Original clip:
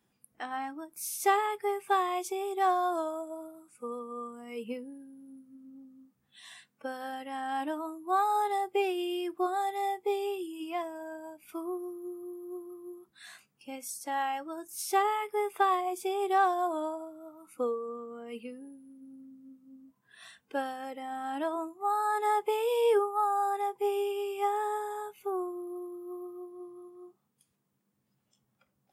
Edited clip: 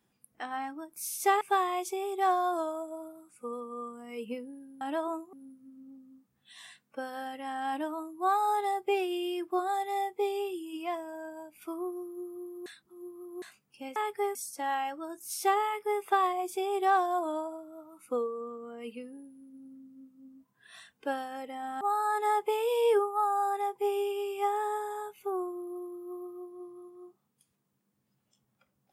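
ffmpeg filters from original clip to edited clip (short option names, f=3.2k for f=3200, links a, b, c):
-filter_complex "[0:a]asplit=9[a][b][c][d][e][f][g][h][i];[a]atrim=end=1.412[j];[b]atrim=start=1.798:end=5.202[k];[c]atrim=start=21.288:end=21.812[l];[d]atrim=start=5.198:end=12.532[m];[e]atrim=start=12.528:end=13.292,asetpts=PTS-STARTPTS,areverse[n];[f]atrim=start=13.288:end=13.832[o];[g]atrim=start=1.408:end=1.802[p];[h]atrim=start=13.828:end=21.292[q];[i]atrim=start=21.808[r];[j][k]acrossfade=d=0.004:c1=hsin:c2=hsin[s];[s][l]acrossfade=d=0.004:c1=hsin:c2=hsin[t];[t][m]acrossfade=d=0.004:c1=hsin:c2=hsin[u];[u][n]acrossfade=d=0.004:c1=hsin:c2=hsin[v];[v][o]acrossfade=d=0.004:c1=hsin:c2=hsin[w];[w][p]acrossfade=d=0.004:c1=hsin:c2=hsin[x];[x][q]acrossfade=d=0.004:c1=hsin:c2=hsin[y];[y][r]acrossfade=d=0.004:c1=hsin:c2=hsin"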